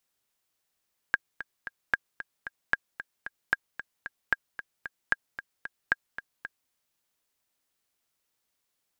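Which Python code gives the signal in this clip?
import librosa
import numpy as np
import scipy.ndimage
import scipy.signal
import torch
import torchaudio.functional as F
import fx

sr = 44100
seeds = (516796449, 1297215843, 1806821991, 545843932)

y = fx.click_track(sr, bpm=226, beats=3, bars=7, hz=1620.0, accent_db=13.5, level_db=-9.0)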